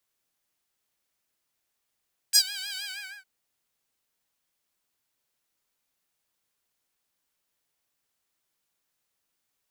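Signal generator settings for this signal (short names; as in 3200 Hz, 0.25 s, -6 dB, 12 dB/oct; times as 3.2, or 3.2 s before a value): synth patch with vibrato G5, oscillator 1 saw, oscillator 2 square, interval +12 st, oscillator 2 level -2.5 dB, sub -27 dB, filter highpass, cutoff 1800 Hz, filter envelope 2 oct, filter decay 0.12 s, attack 25 ms, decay 0.07 s, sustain -21 dB, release 0.43 s, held 0.48 s, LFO 6.4 Hz, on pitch 90 cents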